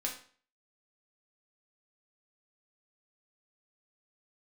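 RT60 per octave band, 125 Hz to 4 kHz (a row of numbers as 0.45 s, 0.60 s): 0.45 s, 0.45 s, 0.45 s, 0.45 s, 0.45 s, 0.40 s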